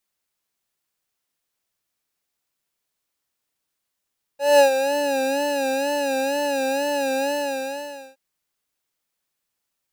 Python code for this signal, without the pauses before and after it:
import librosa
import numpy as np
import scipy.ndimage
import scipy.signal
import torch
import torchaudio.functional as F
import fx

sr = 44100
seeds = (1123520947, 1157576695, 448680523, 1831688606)

y = fx.sub_patch_vibrato(sr, seeds[0], note=73, wave='square', wave2='square', interval_st=7, detune_cents=10, level2_db=-5.0, sub_db=-13.0, noise_db=-18.0, kind='highpass', cutoff_hz=160.0, q=3.1, env_oct=1.5, env_decay_s=1.15, env_sustain_pct=35, attack_ms=202.0, decay_s=0.11, sustain_db=-9, release_s=0.88, note_s=2.89, lfo_hz=2.1, vibrato_cents=80)